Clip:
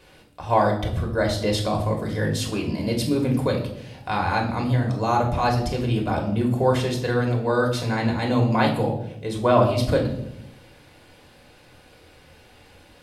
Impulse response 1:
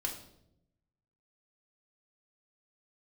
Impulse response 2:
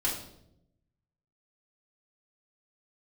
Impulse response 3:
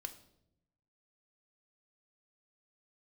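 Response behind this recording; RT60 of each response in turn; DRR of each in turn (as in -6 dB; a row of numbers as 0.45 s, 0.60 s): 1; 0.80 s, 0.80 s, 0.80 s; 0.0 dB, -6.0 dB, 7.0 dB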